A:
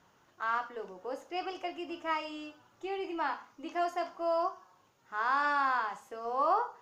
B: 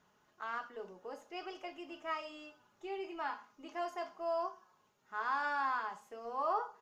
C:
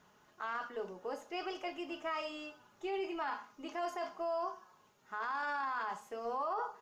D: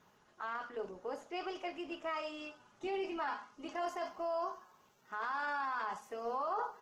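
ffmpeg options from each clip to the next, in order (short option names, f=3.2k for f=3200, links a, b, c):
-af "aecho=1:1:4.8:0.41,volume=-6.5dB"
-af "alimiter=level_in=11dB:limit=-24dB:level=0:latency=1:release=12,volume=-11dB,volume=5.5dB"
-ar 48000 -c:a libopus -b:a 16k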